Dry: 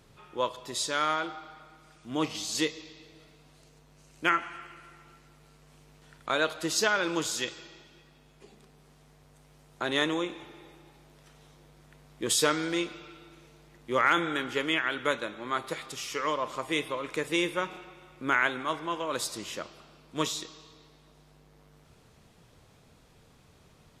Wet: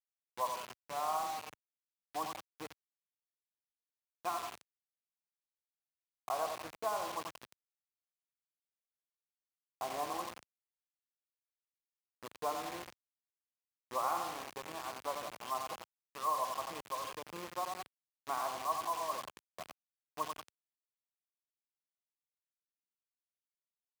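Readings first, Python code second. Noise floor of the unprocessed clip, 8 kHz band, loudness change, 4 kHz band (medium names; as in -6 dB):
-59 dBFS, -13.5 dB, -10.0 dB, -15.5 dB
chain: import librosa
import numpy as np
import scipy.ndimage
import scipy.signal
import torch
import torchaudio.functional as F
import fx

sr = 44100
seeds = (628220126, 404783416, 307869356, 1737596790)

p1 = fx.formant_cascade(x, sr, vowel='a')
p2 = p1 + fx.echo_feedback(p1, sr, ms=90, feedback_pct=44, wet_db=-6.5, dry=0)
p3 = fx.quant_dither(p2, sr, seeds[0], bits=8, dither='none')
p4 = fx.wow_flutter(p3, sr, seeds[1], rate_hz=2.1, depth_cents=25.0)
p5 = scipy.signal.sosfilt(scipy.signal.butter(2, 79.0, 'highpass', fs=sr, output='sos'), p4)
y = F.gain(torch.from_numpy(p5), 5.0).numpy()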